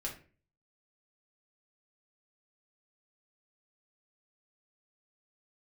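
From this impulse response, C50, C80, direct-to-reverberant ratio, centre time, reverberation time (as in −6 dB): 9.0 dB, 14.5 dB, −2.0 dB, 19 ms, 0.40 s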